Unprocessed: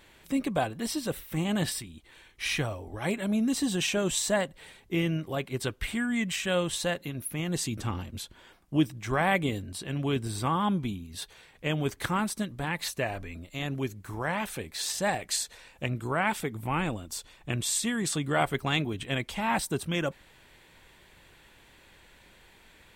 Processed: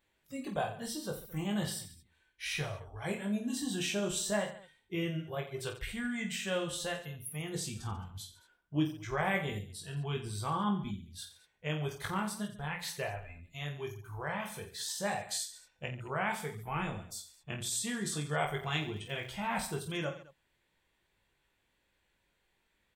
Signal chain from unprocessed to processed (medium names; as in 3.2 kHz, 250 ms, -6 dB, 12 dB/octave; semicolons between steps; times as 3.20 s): spectral noise reduction 14 dB; 18.58–19.31 s: crackle 47 per s -38 dBFS; reverse bouncing-ball echo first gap 20 ms, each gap 1.4×, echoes 5; trim -8 dB